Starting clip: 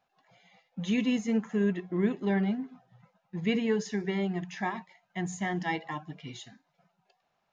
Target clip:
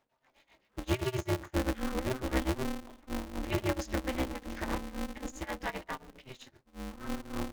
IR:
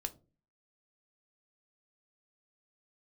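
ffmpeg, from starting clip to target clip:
-filter_complex "[0:a]bandreject=f=60:t=h:w=6,bandreject=f=120:t=h:w=6,bandreject=f=180:t=h:w=6,bandreject=f=240:t=h:w=6,bandreject=f=300:t=h:w=6,bandreject=f=360:t=h:w=6,bandreject=f=420:t=h:w=6,bandreject=f=480:t=h:w=6,bandreject=f=540:t=h:w=6,bandreject=f=600:t=h:w=6,tremolo=f=7.6:d=0.93,asplit=2[s0][s1];[s1]asetrate=22050,aresample=44100[s2];[1:a]atrim=start_sample=2205,afade=t=out:st=0.22:d=0.01,atrim=end_sample=10143[s3];[s2][s3]afir=irnorm=-1:irlink=0,volume=0.531[s4];[s0][s4]amix=inputs=2:normalize=0,aeval=exprs='val(0)*sgn(sin(2*PI*130*n/s))':c=same"

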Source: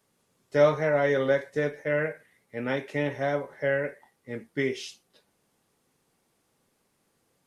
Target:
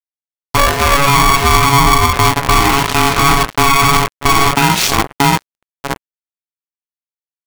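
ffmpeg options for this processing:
-filter_complex "[0:a]bandreject=f=60:t=h:w=6,bandreject=f=120:t=h:w=6,bandreject=f=180:t=h:w=6,bandreject=f=240:t=h:w=6,bandreject=f=300:t=h:w=6,bandreject=f=360:t=h:w=6,bandreject=f=420:t=h:w=6,bandreject=f=480:t=h:w=6,asplit=2[s0][s1];[s1]adelay=630,lowpass=f=840:p=1,volume=0.708,asplit=2[s2][s3];[s3]adelay=630,lowpass=f=840:p=1,volume=0.26,asplit=2[s4][s5];[s5]adelay=630,lowpass=f=840:p=1,volume=0.26,asplit=2[s6][s7];[s7]adelay=630,lowpass=f=840:p=1,volume=0.26[s8];[s2][s4][s6][s8]amix=inputs=4:normalize=0[s9];[s0][s9]amix=inputs=2:normalize=0,acrusher=bits=5:mix=0:aa=0.5,acompressor=threshold=0.0355:ratio=6,asettb=1/sr,asplit=3[s10][s11][s12];[s10]atrim=end=0.574[s13];[s11]atrim=start=0.57:end=1.08,asetpts=PTS-STARTPTS,afade=t=in:d=0.004:c=qsin,afade=t=out:st=0.506:d=0.004:c=qsin,aeval=exprs='(tanh(25.1*val(0)+0.6)-tanh(0.6))/25.1':c=same[s14];[s12]atrim=start=1.076[s15];[s13][s14]acrossfade=d=0.004:c1=hsin:c2=qsin[s16];[s16][s15]acrossfade=d=0.004:c1=qsin:c2=hsin,asplit=3[s17][s18][s19];[s17]afade=t=out:st=1.71:d=0.02[s20];[s18]lowpass=f=1100:w=0.5412,lowpass=f=1100:w=1.3066,afade=t=in:st=1.71:d=0.02,afade=t=out:st=2.11:d=0.02[s21];[s19]afade=t=in:st=2.11:d=0.02[s22];[s20][s21][s22]amix=inputs=3:normalize=0,alimiter=level_in=22.4:limit=0.891:release=50:level=0:latency=1,aeval=exprs='val(0)*sgn(sin(2*PI*560*n/s))':c=same,volume=0.891"

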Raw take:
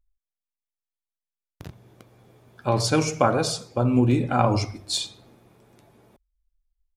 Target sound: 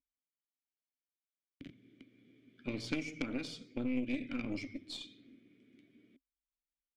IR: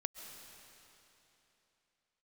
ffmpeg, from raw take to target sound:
-filter_complex "[0:a]asplit=3[s0][s1][s2];[s0]bandpass=f=270:t=q:w=8,volume=1[s3];[s1]bandpass=f=2290:t=q:w=8,volume=0.501[s4];[s2]bandpass=f=3010:t=q:w=8,volume=0.355[s5];[s3][s4][s5]amix=inputs=3:normalize=0,acrossover=split=960|5800[s6][s7][s8];[s6]acompressor=threshold=0.00794:ratio=4[s9];[s7]acompressor=threshold=0.00355:ratio=4[s10];[s8]acompressor=threshold=0.001:ratio=4[s11];[s9][s10][s11]amix=inputs=3:normalize=0,aeval=exprs='0.0376*(cos(1*acos(clip(val(0)/0.0376,-1,1)))-cos(1*PI/2))+0.0075*(cos(3*acos(clip(val(0)/0.0376,-1,1)))-cos(3*PI/2))+0.00422*(cos(4*acos(clip(val(0)/0.0376,-1,1)))-cos(4*PI/2))+0.00133*(cos(5*acos(clip(val(0)/0.0376,-1,1)))-cos(5*PI/2))+0.000266*(cos(6*acos(clip(val(0)/0.0376,-1,1)))-cos(6*PI/2))':c=same,volume=2.82"

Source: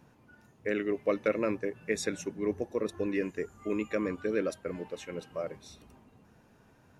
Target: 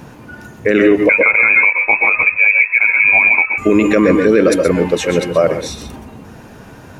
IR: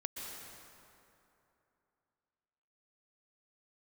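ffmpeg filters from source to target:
-filter_complex "[0:a]asettb=1/sr,asplit=3[s0][s1][s2];[s0]atrim=end=1.094[s3];[s1]atrim=start=1.09:end=3.58,asetpts=PTS-STARTPTS,afade=t=in:d=0.004:c=qsin,afade=t=out:st=2.486:d=0.004:c=qsin,lowpass=f=2300:t=q:w=0.5098,lowpass=f=2300:t=q:w=0.6013,lowpass=f=2300:t=q:w=0.9,lowpass=f=2300:t=q:w=2.563,afreqshift=-2700[s4];[s2]atrim=start=3.576[s5];[s3][s4]acrossfade=d=0.004:c1=hsin:c2=qsin[s6];[s6][s5]acrossfade=d=0.004:c1=qsin:c2=hsin[s7];[1:a]atrim=start_sample=2205,afade=t=out:st=0.19:d=0.01,atrim=end_sample=8820[s8];[s7][s8]afir=irnorm=-1:irlink=0,alimiter=level_in=25.1:limit=0.891:release=50:level=0:latency=1,volume=0.891"

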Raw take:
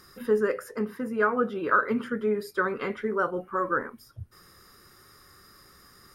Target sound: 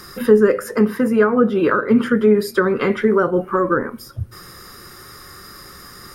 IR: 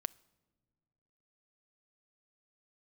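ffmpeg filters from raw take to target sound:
-filter_complex "[0:a]acrossover=split=430[s0][s1];[s1]acompressor=threshold=0.0178:ratio=4[s2];[s0][s2]amix=inputs=2:normalize=0,asplit=2[s3][s4];[1:a]atrim=start_sample=2205[s5];[s4][s5]afir=irnorm=-1:irlink=0,volume=2.99[s6];[s3][s6]amix=inputs=2:normalize=0,volume=1.58"

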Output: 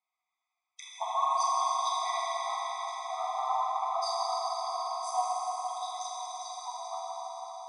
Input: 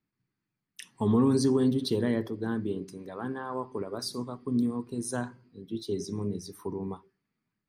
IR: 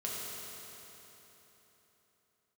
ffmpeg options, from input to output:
-filter_complex "[0:a]highpass=430,equalizer=f=690:t=q:w=4:g=6,equalizer=f=1700:t=q:w=4:g=-6,equalizer=f=2800:t=q:w=4:g=-9,equalizer=f=4800:t=q:w=4:g=-8,lowpass=f=6400:w=0.5412,lowpass=f=6400:w=1.3066,bandreject=f=830:w=12[s0];[1:a]atrim=start_sample=2205,asetrate=22932,aresample=44100[s1];[s0][s1]afir=irnorm=-1:irlink=0,afftfilt=real='re*eq(mod(floor(b*sr/1024/650),2),1)':imag='im*eq(mod(floor(b*sr/1024/650),2),1)':win_size=1024:overlap=0.75,volume=1.68"

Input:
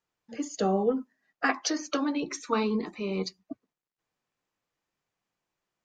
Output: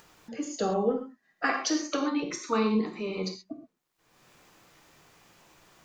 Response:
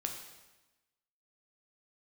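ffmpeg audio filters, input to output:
-filter_complex "[1:a]atrim=start_sample=2205,atrim=end_sample=6174[s0];[0:a][s0]afir=irnorm=-1:irlink=0,acompressor=mode=upward:threshold=0.0141:ratio=2.5"

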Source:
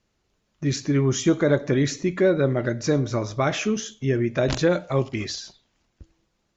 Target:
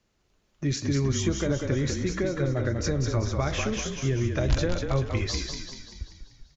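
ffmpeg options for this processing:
-filter_complex "[0:a]acrossover=split=160[s0][s1];[s1]acompressor=threshold=0.0501:ratio=6[s2];[s0][s2]amix=inputs=2:normalize=0,asubboost=boost=7:cutoff=71,asplit=8[s3][s4][s5][s6][s7][s8][s9][s10];[s4]adelay=194,afreqshift=-37,volume=0.562[s11];[s5]adelay=388,afreqshift=-74,volume=0.292[s12];[s6]adelay=582,afreqshift=-111,volume=0.151[s13];[s7]adelay=776,afreqshift=-148,volume=0.0794[s14];[s8]adelay=970,afreqshift=-185,volume=0.0412[s15];[s9]adelay=1164,afreqshift=-222,volume=0.0214[s16];[s10]adelay=1358,afreqshift=-259,volume=0.0111[s17];[s3][s11][s12][s13][s14][s15][s16][s17]amix=inputs=8:normalize=0"

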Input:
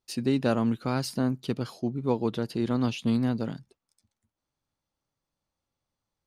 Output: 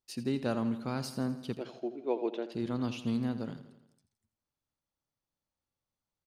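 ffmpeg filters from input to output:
-filter_complex "[0:a]asettb=1/sr,asplit=3[s0][s1][s2];[s0]atrim=end=1.574[s3];[s1]atrim=start=1.57:end=2.52,asetpts=PTS-STARTPTS,afade=t=in:d=0.004:c=qsin,afade=t=out:st=0.946:d=0.004:c=qsin,highpass=f=310:w=0.5412,highpass=f=310:w=1.3066,equalizer=f=350:t=q:w=4:g=7,equalizer=f=640:t=q:w=4:g=9,equalizer=f=1200:t=q:w=4:g=-7,equalizer=f=2500:t=q:w=4:g=6,equalizer=f=4800:t=q:w=4:g=-10,lowpass=f=5800:w=0.5412,lowpass=f=5800:w=1.3066[s4];[s2]atrim=start=2.516[s5];[s3][s4]acrossfade=d=0.004:c1=hsin:c2=qsin[s6];[s6][s5]acrossfade=d=0.004:c1=qsin:c2=hsin,asplit=2[s7][s8];[s8]aecho=0:1:83|166|249|332|415|498:0.224|0.125|0.0702|0.0393|0.022|0.0123[s9];[s7][s9]amix=inputs=2:normalize=0,volume=0.447"

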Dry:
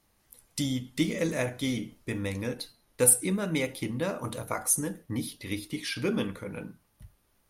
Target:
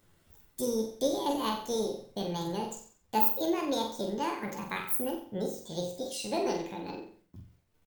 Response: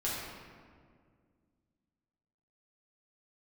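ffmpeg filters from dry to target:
-af "lowshelf=f=220:g=5.5,agate=range=0.0224:threshold=0.00158:ratio=3:detection=peak,acompressor=mode=upward:threshold=0.00631:ratio=2.5,atempo=0.55,flanger=delay=8.8:depth=7:regen=84:speed=1.9:shape=triangular,aecho=1:1:78|156|234|312|390|468:0.501|0.261|0.136|0.0705|0.0366|0.0191,asetrate=76440,aresample=44100"

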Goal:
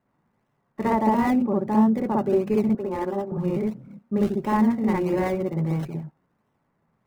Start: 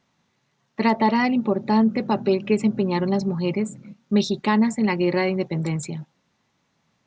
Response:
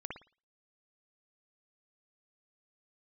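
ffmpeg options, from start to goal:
-filter_complex "[0:a]asettb=1/sr,asplit=3[s0][s1][s2];[s0]atrim=end=2.694[s3];[s1]atrim=start=2.69:end=3.32,asetpts=PTS-STARTPTS,afade=t=in:d=0.004:c=qsin,afade=t=out:st=0.626:d=0.004:c=qsin,highpass=360,lowpass=4400[s4];[s2]atrim=start=3.316[s5];[s3][s4]acrossfade=d=0.004:c1=hsin:c2=qsin[s6];[s6][s5]acrossfade=d=0.004:c1=qsin:c2=hsin[s7];[1:a]atrim=start_sample=2205,atrim=end_sample=3969[s8];[s7][s8]afir=irnorm=-1:irlink=0,acrossover=split=1900[s9][s10];[s10]acrusher=samples=37:mix=1:aa=0.000001:lfo=1:lforange=37:lforate=1.5[s11];[s9][s11]amix=inputs=2:normalize=0"

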